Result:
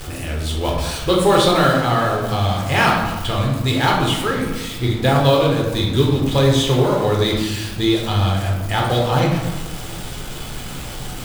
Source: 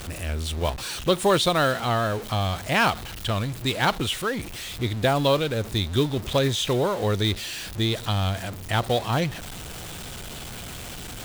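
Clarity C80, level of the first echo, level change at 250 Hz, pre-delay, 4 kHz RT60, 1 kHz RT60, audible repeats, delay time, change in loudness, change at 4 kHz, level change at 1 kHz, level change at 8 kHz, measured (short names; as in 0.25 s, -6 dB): 5.0 dB, none, +8.5 dB, 7 ms, 0.65 s, 1.3 s, none, none, +6.5 dB, +4.5 dB, +7.0 dB, +4.0 dB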